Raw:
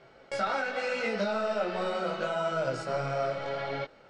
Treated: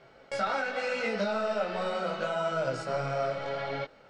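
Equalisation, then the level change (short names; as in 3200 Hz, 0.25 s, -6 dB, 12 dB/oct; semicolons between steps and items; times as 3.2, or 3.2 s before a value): notch 360 Hz, Q 12; 0.0 dB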